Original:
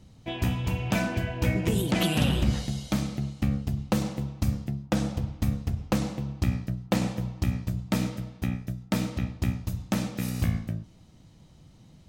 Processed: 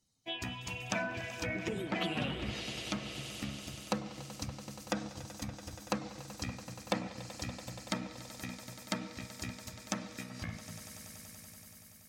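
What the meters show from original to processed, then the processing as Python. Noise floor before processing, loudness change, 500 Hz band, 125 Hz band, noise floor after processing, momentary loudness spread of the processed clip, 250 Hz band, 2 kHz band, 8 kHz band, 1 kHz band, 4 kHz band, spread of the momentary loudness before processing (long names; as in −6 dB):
−54 dBFS, −10.5 dB, −7.0 dB, −16.5 dB, −55 dBFS, 11 LU, −12.5 dB, −4.0 dB, −3.5 dB, −5.0 dB, −4.5 dB, 8 LU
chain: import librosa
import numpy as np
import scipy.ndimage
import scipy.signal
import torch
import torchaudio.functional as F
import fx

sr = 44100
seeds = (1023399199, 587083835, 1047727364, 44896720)

p1 = fx.bin_expand(x, sr, power=1.5)
p2 = fx.riaa(p1, sr, side='recording')
p3 = p2 + fx.echo_swell(p2, sr, ms=95, loudest=5, wet_db=-17, dry=0)
p4 = fx.env_lowpass_down(p3, sr, base_hz=1900.0, full_db=-27.0)
y = F.gain(torch.from_numpy(p4), -2.0).numpy()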